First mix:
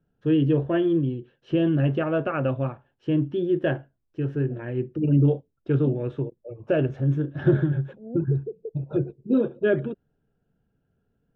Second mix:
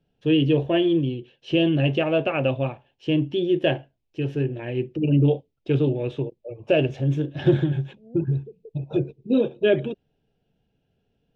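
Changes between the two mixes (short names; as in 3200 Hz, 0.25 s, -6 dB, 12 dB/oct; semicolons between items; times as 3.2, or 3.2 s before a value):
first voice: add EQ curve 230 Hz 0 dB, 810 Hz +5 dB, 1400 Hz -6 dB, 2500 Hz +13 dB; second voice -9.0 dB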